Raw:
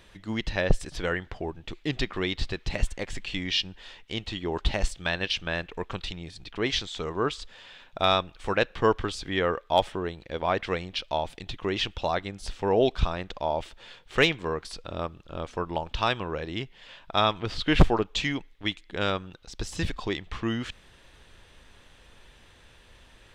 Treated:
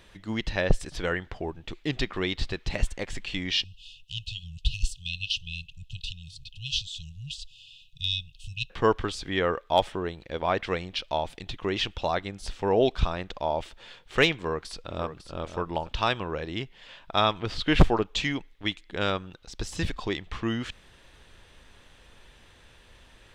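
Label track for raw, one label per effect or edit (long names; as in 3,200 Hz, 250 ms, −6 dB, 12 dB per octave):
3.640000	8.700000	linear-phase brick-wall band-stop 160–2,500 Hz
14.340000	15.330000	delay throw 550 ms, feedback 15%, level −10.5 dB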